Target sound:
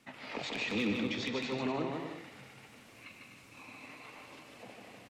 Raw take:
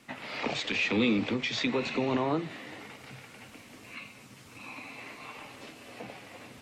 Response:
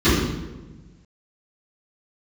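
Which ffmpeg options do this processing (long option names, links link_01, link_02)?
-af "aeval=exprs='0.126*(abs(mod(val(0)/0.126+3,4)-2)-1)':channel_layout=same,atempo=1.3,aecho=1:1:150|247.5|310.9|352.1|378.8:0.631|0.398|0.251|0.158|0.1,volume=-7.5dB"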